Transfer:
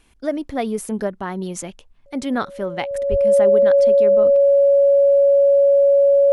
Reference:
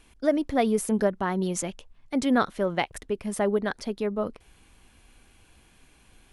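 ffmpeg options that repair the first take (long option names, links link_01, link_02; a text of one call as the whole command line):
ffmpeg -i in.wav -filter_complex "[0:a]bandreject=frequency=560:width=30,asplit=3[link_01][link_02][link_03];[link_01]afade=type=out:start_time=3.1:duration=0.02[link_04];[link_02]highpass=frequency=140:width=0.5412,highpass=frequency=140:width=1.3066,afade=type=in:start_time=3.1:duration=0.02,afade=type=out:start_time=3.22:duration=0.02[link_05];[link_03]afade=type=in:start_time=3.22:duration=0.02[link_06];[link_04][link_05][link_06]amix=inputs=3:normalize=0" out.wav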